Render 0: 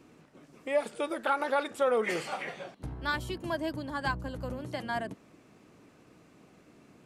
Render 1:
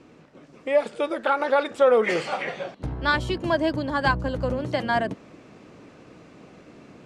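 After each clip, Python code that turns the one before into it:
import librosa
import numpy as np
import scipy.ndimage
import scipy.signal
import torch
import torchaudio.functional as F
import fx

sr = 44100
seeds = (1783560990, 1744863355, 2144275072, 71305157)

y = scipy.signal.sosfilt(scipy.signal.butter(2, 6000.0, 'lowpass', fs=sr, output='sos'), x)
y = fx.peak_eq(y, sr, hz=530.0, db=3.5, octaves=0.41)
y = fx.rider(y, sr, range_db=3, speed_s=2.0)
y = y * 10.0 ** (7.0 / 20.0)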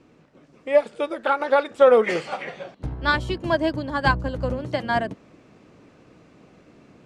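y = fx.low_shelf(x, sr, hz=120.0, db=4.5)
y = fx.upward_expand(y, sr, threshold_db=-31.0, expansion=1.5)
y = y * 10.0 ** (4.0 / 20.0)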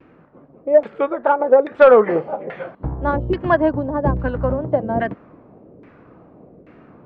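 y = fx.vibrato(x, sr, rate_hz=1.8, depth_cents=77.0)
y = fx.filter_lfo_lowpass(y, sr, shape='saw_down', hz=1.2, low_hz=440.0, high_hz=2100.0, q=1.5)
y = 10.0 ** (-5.5 / 20.0) * np.tanh(y / 10.0 ** (-5.5 / 20.0))
y = y * 10.0 ** (5.0 / 20.0)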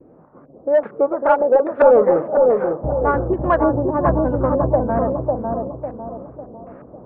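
y = 10.0 ** (-12.0 / 20.0) * np.tanh(x / 10.0 ** (-12.0 / 20.0))
y = fx.filter_lfo_lowpass(y, sr, shape='saw_up', hz=2.2, low_hz=490.0, high_hz=1600.0, q=1.8)
y = fx.echo_bbd(y, sr, ms=550, stages=4096, feedback_pct=41, wet_db=-3.0)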